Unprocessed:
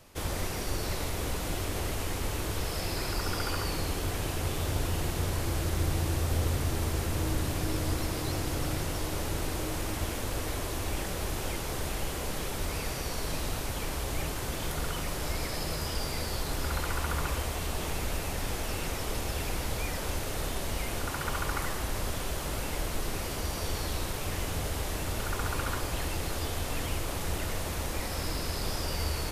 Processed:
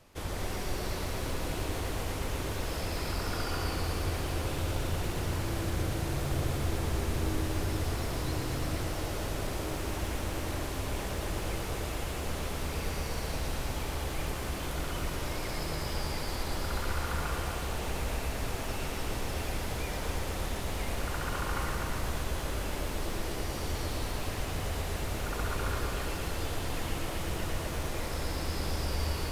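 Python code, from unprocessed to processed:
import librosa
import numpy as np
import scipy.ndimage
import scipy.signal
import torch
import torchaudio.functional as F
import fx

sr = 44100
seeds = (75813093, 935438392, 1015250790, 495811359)

p1 = fx.high_shelf(x, sr, hz=5500.0, db=-5.5)
p2 = p1 + fx.echo_single(p1, sr, ms=249, db=-7.5, dry=0)
p3 = fx.echo_crushed(p2, sr, ms=117, feedback_pct=80, bits=9, wet_db=-7)
y = F.gain(torch.from_numpy(p3), -3.0).numpy()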